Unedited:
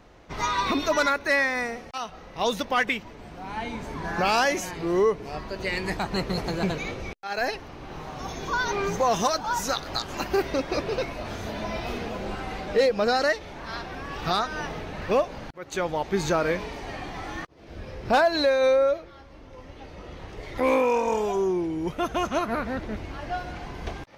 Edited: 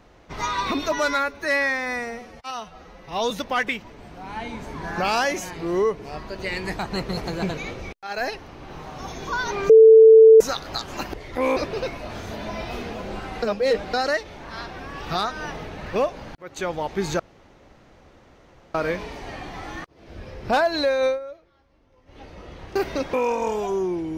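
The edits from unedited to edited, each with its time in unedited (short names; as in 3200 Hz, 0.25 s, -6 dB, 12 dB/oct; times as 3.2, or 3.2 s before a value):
0.92–2.51 stretch 1.5×
8.9–9.61 bleep 444 Hz -6 dBFS
10.34–10.72 swap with 20.36–20.79
12.58–13.09 reverse
16.35 insert room tone 1.55 s
18.67–19.79 dip -14.5 dB, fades 0.13 s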